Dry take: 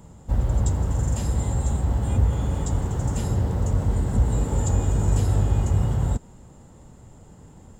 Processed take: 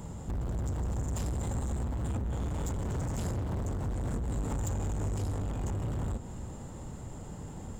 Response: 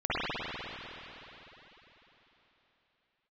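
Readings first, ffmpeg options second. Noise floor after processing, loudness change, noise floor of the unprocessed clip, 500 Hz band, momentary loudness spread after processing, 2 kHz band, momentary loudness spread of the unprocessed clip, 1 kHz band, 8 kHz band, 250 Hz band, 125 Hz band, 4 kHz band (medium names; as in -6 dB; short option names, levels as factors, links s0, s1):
-43 dBFS, -11.0 dB, -48 dBFS, -7.5 dB, 10 LU, -6.5 dB, 4 LU, -7.5 dB, -8.5 dB, -7.5 dB, -11.0 dB, -7.5 dB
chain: -filter_complex "[0:a]acompressor=threshold=0.0501:ratio=6,asoftclip=type=tanh:threshold=0.0158,asplit=2[s0][s1];[1:a]atrim=start_sample=2205[s2];[s1][s2]afir=irnorm=-1:irlink=0,volume=0.0501[s3];[s0][s3]amix=inputs=2:normalize=0,volume=1.78"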